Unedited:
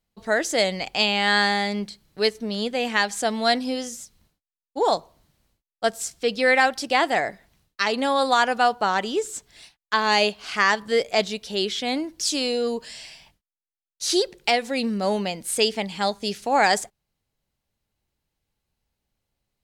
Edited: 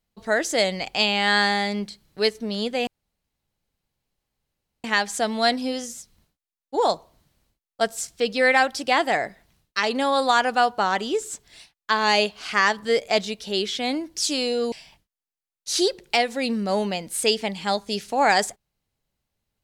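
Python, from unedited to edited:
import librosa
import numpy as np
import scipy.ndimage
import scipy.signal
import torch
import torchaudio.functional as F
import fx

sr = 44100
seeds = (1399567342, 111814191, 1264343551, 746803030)

y = fx.edit(x, sr, fx.insert_room_tone(at_s=2.87, length_s=1.97),
    fx.cut(start_s=12.75, length_s=0.31), tone=tone)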